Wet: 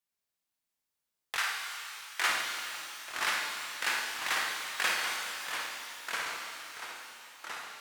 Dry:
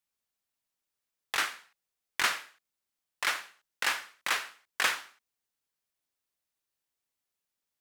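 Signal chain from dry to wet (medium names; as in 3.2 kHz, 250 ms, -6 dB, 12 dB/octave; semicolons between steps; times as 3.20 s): flutter echo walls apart 9.2 m, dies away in 0.52 s; ever faster or slower copies 698 ms, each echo -2 st, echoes 2, each echo -6 dB; 1.36–2.26 s: high-pass 800 Hz -> 340 Hz 24 dB/octave; pitch-shifted reverb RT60 2.8 s, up +12 st, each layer -8 dB, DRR 1.5 dB; trim -4 dB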